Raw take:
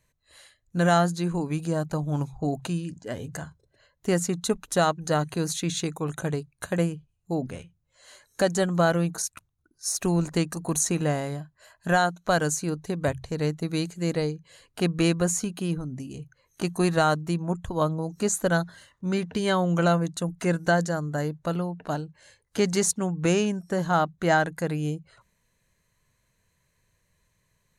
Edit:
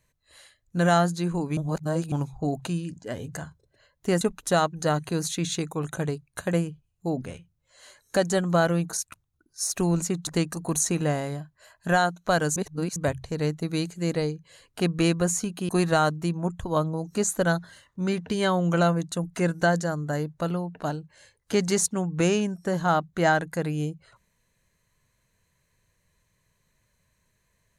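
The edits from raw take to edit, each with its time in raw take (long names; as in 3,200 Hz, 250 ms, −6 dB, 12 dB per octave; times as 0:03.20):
0:01.57–0:02.12: reverse
0:04.21–0:04.46: move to 0:10.27
0:12.56–0:12.96: reverse
0:15.69–0:16.74: remove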